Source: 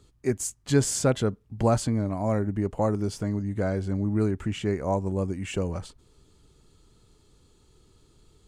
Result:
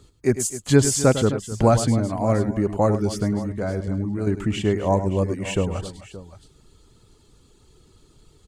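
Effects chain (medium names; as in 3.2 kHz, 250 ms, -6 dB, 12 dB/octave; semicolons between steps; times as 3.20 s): 3.48–4.27 s: level held to a coarse grid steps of 10 dB; reverb removal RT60 0.6 s; multi-tap echo 103/260/573 ms -11.5/-15.5/-16.5 dB; trim +6 dB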